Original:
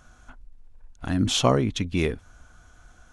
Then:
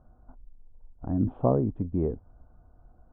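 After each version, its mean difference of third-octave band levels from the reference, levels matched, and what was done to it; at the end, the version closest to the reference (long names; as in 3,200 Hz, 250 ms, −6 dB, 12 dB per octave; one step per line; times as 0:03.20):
8.0 dB: inverse Chebyshev low-pass filter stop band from 4,900 Hz, stop band 80 dB
level −2.5 dB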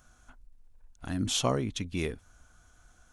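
1.5 dB: high-shelf EQ 7,100 Hz +11 dB
level −8 dB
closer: second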